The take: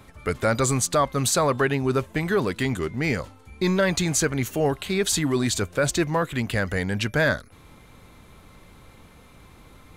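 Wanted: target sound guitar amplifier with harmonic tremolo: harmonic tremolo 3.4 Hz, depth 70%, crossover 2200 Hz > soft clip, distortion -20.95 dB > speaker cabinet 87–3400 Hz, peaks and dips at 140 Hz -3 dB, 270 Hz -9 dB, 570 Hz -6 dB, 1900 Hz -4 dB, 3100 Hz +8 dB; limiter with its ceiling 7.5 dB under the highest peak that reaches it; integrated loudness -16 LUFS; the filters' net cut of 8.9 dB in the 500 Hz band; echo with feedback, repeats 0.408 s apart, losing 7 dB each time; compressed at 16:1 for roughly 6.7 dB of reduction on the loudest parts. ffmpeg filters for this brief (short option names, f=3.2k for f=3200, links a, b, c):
-filter_complex "[0:a]equalizer=f=500:t=o:g=-8,acompressor=threshold=-26dB:ratio=16,alimiter=level_in=0.5dB:limit=-24dB:level=0:latency=1,volume=-0.5dB,aecho=1:1:408|816|1224|1632|2040:0.447|0.201|0.0905|0.0407|0.0183,acrossover=split=2200[a][b];[a]aeval=exprs='val(0)*(1-0.7/2+0.7/2*cos(2*PI*3.4*n/s))':c=same[c];[b]aeval=exprs='val(0)*(1-0.7/2-0.7/2*cos(2*PI*3.4*n/s))':c=same[d];[c][d]amix=inputs=2:normalize=0,asoftclip=threshold=-26dB,highpass=87,equalizer=f=140:t=q:w=4:g=-3,equalizer=f=270:t=q:w=4:g=-9,equalizer=f=570:t=q:w=4:g=-6,equalizer=f=1.9k:t=q:w=4:g=-4,equalizer=f=3.1k:t=q:w=4:g=8,lowpass=f=3.4k:w=0.5412,lowpass=f=3.4k:w=1.3066,volume=24.5dB"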